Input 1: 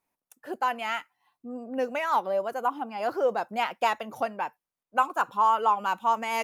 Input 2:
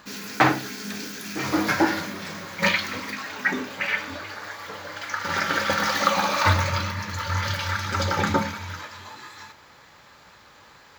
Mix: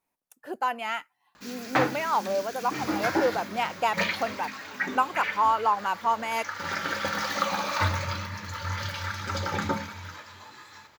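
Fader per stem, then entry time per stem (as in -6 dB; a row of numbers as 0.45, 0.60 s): -0.5, -6.0 dB; 0.00, 1.35 s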